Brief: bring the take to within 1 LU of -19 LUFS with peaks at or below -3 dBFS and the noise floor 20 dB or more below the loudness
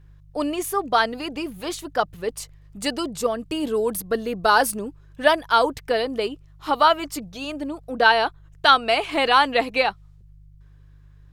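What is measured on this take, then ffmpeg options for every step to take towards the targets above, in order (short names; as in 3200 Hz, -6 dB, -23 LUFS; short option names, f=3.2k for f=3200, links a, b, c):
hum 50 Hz; harmonics up to 150 Hz; hum level -46 dBFS; loudness -22.0 LUFS; peak -2.5 dBFS; loudness target -19.0 LUFS
-> -af "bandreject=f=50:t=h:w=4,bandreject=f=100:t=h:w=4,bandreject=f=150:t=h:w=4"
-af "volume=3dB,alimiter=limit=-3dB:level=0:latency=1"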